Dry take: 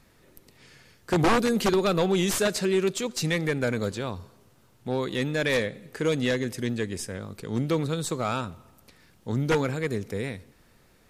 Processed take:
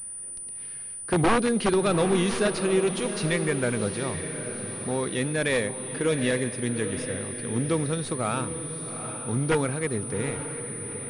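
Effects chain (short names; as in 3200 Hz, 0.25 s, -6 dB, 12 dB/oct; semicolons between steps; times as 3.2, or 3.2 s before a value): on a send: diffused feedback echo 0.8 s, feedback 45%, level -9 dB; on the sum: pulse-width modulation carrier 9400 Hz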